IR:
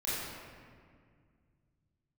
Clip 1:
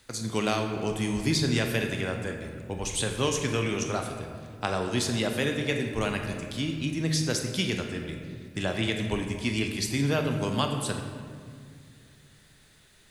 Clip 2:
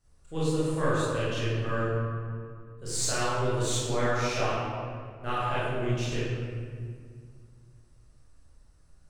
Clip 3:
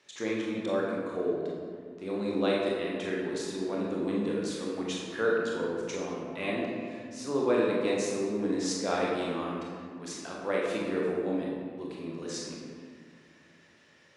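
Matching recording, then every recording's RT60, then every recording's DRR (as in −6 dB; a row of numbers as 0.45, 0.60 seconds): 2; 2.1, 2.0, 2.0 seconds; 3.5, −10.5, −4.0 decibels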